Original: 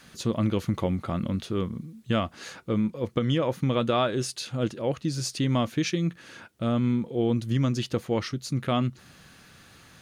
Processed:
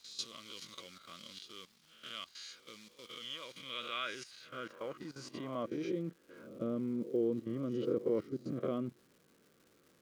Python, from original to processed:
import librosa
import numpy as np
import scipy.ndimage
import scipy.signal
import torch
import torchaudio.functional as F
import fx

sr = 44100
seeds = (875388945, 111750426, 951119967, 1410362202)

y = fx.spec_swells(x, sr, rise_s=0.55)
y = fx.peak_eq(y, sr, hz=730.0, db=-11.5, octaves=0.43)
y = fx.level_steps(y, sr, step_db=15)
y = fx.notch_comb(y, sr, f0_hz=880.0)
y = fx.quant_companded(y, sr, bits=6)
y = fx.filter_sweep_bandpass(y, sr, from_hz=4400.0, to_hz=430.0, start_s=3.31, end_s=6.17, q=1.6)
y = fx.dmg_crackle(y, sr, seeds[0], per_s=430.0, level_db=-58.0)
y = y * 10.0 ** (2.0 / 20.0)